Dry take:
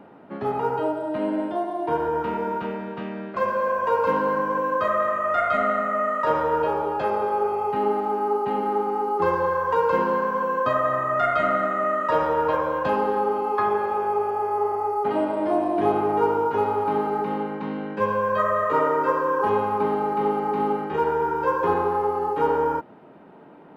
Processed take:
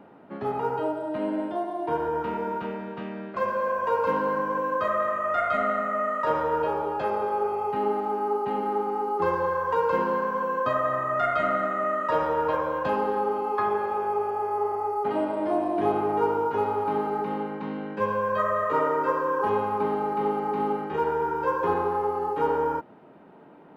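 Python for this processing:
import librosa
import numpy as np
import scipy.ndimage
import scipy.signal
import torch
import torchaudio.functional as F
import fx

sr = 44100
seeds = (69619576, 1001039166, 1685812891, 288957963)

y = x * 10.0 ** (-3.0 / 20.0)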